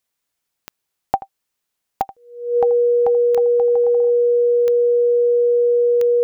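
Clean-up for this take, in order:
click removal
notch filter 480 Hz, Q 30
echo removal 82 ms −17 dB

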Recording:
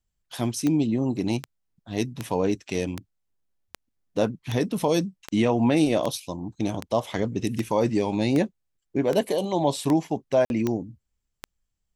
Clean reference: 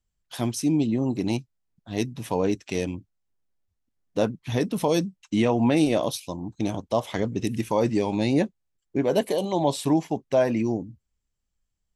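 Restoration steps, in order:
click removal
repair the gap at 0:10.45, 51 ms

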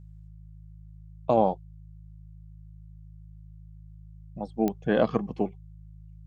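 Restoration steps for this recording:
click removal
hum removal 52.8 Hz, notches 3

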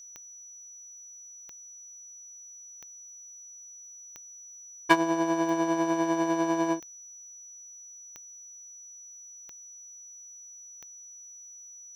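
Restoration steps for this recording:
click removal
notch filter 5,900 Hz, Q 30

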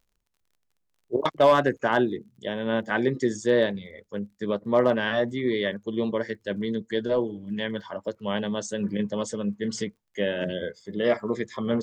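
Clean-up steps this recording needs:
clipped peaks rebuilt −11 dBFS
click removal

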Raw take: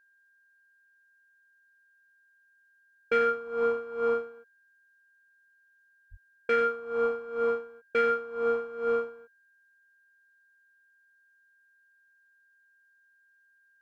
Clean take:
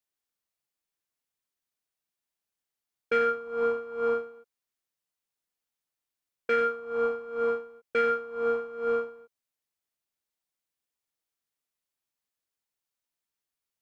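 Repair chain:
notch filter 1,600 Hz, Q 30
0:06.10–0:06.22: high-pass filter 140 Hz 24 dB per octave

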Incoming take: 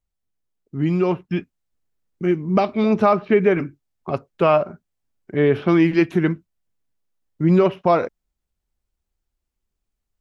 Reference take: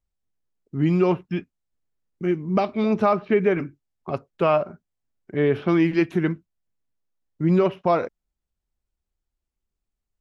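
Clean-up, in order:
level correction −3.5 dB, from 0:01.31

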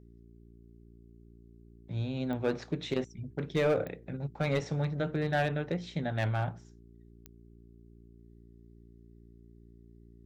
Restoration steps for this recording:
clipped peaks rebuilt −21.5 dBFS
click removal
hum removal 57.6 Hz, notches 7

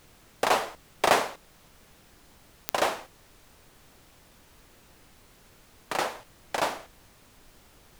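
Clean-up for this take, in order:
click removal
noise reduction from a noise print 19 dB

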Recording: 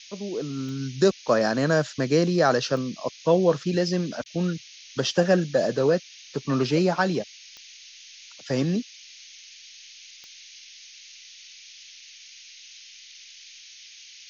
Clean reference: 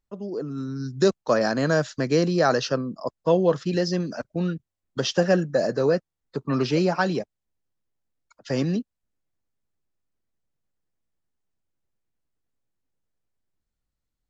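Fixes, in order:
click removal
repair the gap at 0:04.24, 17 ms
noise reduction from a noise print 30 dB

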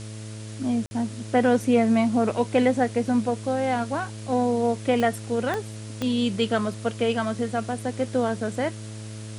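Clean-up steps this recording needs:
click removal
hum removal 108.2 Hz, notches 6
repair the gap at 0:00.86, 50 ms
broadband denoise 30 dB, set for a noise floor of −37 dBFS

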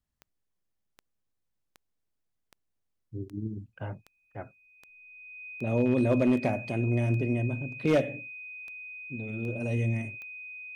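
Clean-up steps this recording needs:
clipped peaks rebuilt −17.5 dBFS
click removal
notch filter 2,500 Hz, Q 30

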